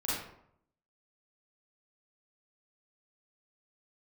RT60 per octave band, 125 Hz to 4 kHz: 0.85, 0.75, 0.70, 0.70, 0.55, 0.40 s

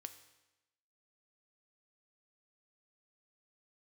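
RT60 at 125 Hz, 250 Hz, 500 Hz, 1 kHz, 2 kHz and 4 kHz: 1.0, 1.0, 1.0, 1.0, 1.0, 0.95 s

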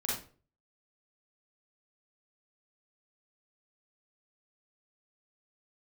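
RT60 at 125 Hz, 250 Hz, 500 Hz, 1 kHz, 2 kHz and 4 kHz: 0.60, 0.45, 0.45, 0.35, 0.35, 0.30 s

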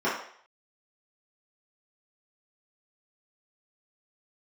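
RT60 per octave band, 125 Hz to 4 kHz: 0.35, 0.45, 0.55, 0.60, 0.60, 0.60 s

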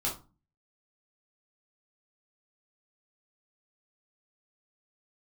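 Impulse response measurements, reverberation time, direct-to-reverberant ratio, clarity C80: 0.30 s, -4.5 dB, 16.0 dB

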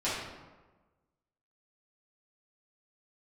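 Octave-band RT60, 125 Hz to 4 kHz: 1.4, 1.3, 1.3, 1.2, 0.95, 0.70 s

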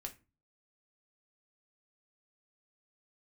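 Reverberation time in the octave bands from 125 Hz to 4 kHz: 0.55, 0.45, 0.35, 0.30, 0.25, 0.20 s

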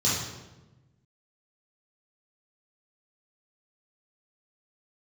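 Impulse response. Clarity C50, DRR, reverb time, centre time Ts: 0.0 dB, -8.5 dB, 1.1 s, 68 ms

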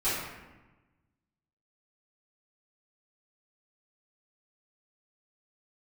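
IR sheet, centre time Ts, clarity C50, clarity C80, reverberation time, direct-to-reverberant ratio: 83 ms, -0.5 dB, 2.5 dB, 1.1 s, -15.5 dB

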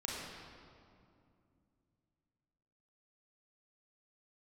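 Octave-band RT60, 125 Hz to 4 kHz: 3.8, 3.5, 2.6, 2.3, 1.8, 1.5 s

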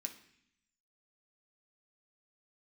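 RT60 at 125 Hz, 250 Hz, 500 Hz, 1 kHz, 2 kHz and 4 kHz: 1.0, 1.0, 0.65, 0.65, 0.90, 0.85 s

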